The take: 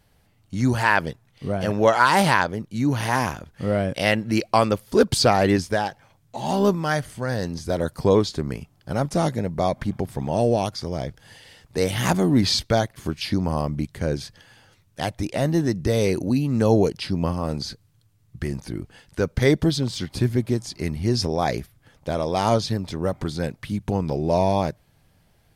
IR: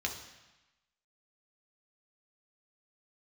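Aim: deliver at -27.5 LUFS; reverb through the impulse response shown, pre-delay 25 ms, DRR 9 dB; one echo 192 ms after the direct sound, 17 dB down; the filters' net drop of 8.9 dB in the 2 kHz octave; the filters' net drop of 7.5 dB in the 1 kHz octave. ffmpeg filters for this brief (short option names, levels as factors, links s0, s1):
-filter_complex "[0:a]equalizer=f=1000:t=o:g=-8.5,equalizer=f=2000:t=o:g=-8.5,aecho=1:1:192:0.141,asplit=2[s0][s1];[1:a]atrim=start_sample=2205,adelay=25[s2];[s1][s2]afir=irnorm=-1:irlink=0,volume=0.224[s3];[s0][s3]amix=inputs=2:normalize=0,volume=0.708"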